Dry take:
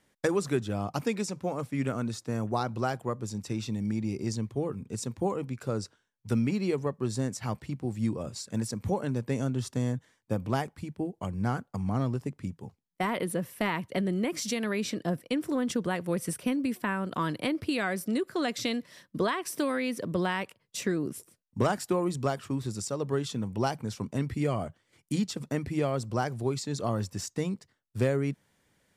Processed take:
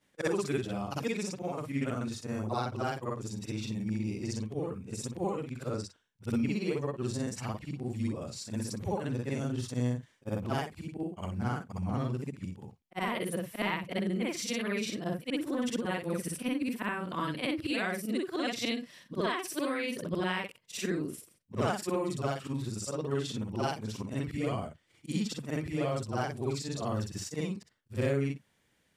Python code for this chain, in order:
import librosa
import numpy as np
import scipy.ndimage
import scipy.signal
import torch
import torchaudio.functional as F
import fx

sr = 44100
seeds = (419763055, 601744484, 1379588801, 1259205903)

y = fx.frame_reverse(x, sr, frame_ms=130.0)
y = fx.peak_eq(y, sr, hz=2800.0, db=4.5, octaves=0.88)